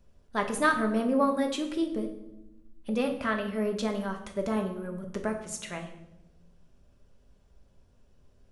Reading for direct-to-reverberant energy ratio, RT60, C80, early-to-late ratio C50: 3.0 dB, 0.90 s, 12.0 dB, 9.5 dB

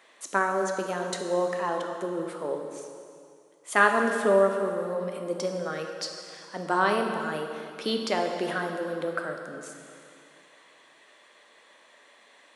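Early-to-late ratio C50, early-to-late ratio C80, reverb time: 4.5 dB, 5.5 dB, 2.3 s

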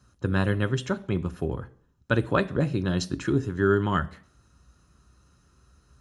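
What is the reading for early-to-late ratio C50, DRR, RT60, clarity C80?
20.0 dB, 11.0 dB, 0.55 s, 23.5 dB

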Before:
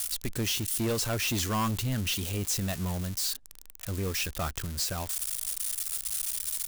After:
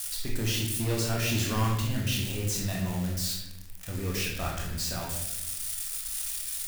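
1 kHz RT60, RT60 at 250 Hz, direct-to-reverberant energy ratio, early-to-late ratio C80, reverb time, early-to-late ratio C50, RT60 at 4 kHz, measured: 0.75 s, 1.3 s, -3.5 dB, 5.0 dB, 0.85 s, 2.0 dB, 0.65 s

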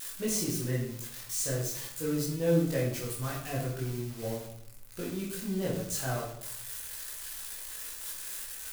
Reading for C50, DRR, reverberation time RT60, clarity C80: 4.0 dB, -5.0 dB, 0.70 s, 7.5 dB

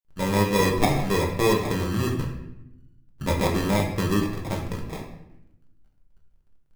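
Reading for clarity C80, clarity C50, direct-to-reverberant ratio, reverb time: 7.5 dB, 5.5 dB, -0.5 dB, 0.85 s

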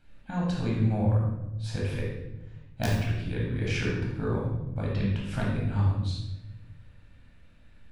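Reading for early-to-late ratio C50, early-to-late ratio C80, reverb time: 1.0 dB, 4.0 dB, 0.95 s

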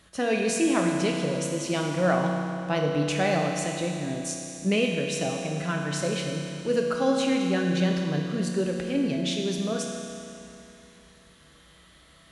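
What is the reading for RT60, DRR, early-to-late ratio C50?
2.9 s, 0.0 dB, 2.0 dB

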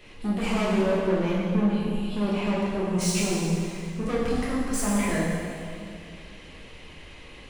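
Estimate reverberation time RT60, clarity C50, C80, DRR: 2.3 s, -1.5 dB, 0.5 dB, -7.5 dB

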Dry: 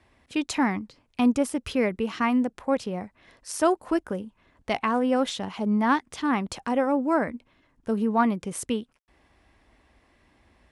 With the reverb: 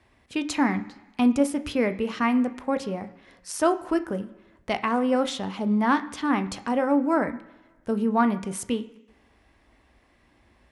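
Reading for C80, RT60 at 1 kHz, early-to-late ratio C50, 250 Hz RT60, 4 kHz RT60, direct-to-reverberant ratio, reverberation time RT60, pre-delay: 17.5 dB, 1.2 s, 15.0 dB, 1.0 s, 1.2 s, 9.5 dB, 1.2 s, 17 ms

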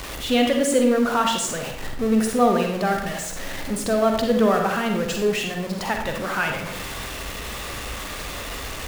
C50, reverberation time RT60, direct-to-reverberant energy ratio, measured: 4.0 dB, 0.70 s, 2.5 dB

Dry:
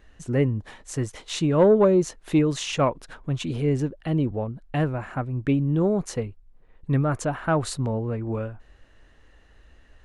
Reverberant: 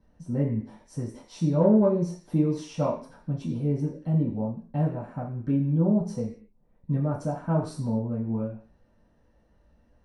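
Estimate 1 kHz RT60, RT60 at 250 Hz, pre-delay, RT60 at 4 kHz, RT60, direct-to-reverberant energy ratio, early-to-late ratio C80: 0.45 s, 0.55 s, 3 ms, no reading, 0.45 s, -8.0 dB, 12.5 dB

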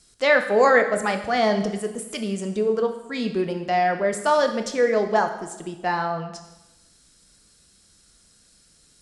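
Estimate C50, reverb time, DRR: 9.5 dB, 1.0 s, 6.0 dB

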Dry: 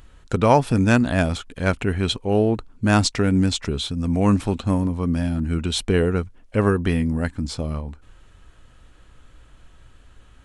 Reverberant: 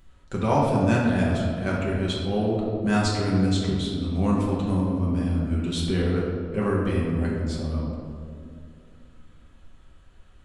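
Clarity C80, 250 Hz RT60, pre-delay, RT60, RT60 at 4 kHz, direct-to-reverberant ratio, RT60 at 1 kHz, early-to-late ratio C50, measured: 2.0 dB, 3.3 s, 5 ms, 2.3 s, 1.2 s, -5.0 dB, 1.8 s, 0.0 dB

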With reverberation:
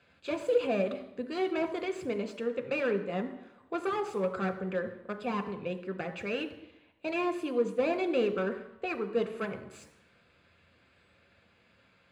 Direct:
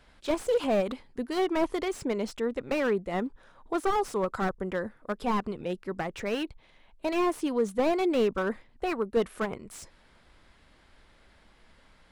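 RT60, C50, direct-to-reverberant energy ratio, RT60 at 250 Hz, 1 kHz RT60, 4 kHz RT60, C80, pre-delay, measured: 0.85 s, 12.0 dB, 7.0 dB, 0.85 s, 0.85 s, 0.90 s, 14.0 dB, 3 ms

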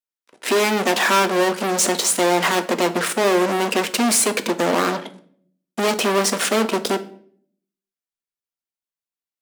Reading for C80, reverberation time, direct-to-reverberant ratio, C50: 19.5 dB, 0.60 s, 9.0 dB, 15.5 dB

